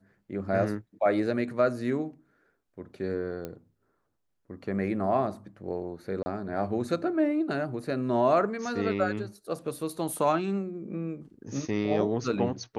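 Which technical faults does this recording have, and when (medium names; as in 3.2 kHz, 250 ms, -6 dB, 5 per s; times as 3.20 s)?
3.45 s: pop -22 dBFS
6.23–6.26 s: dropout 30 ms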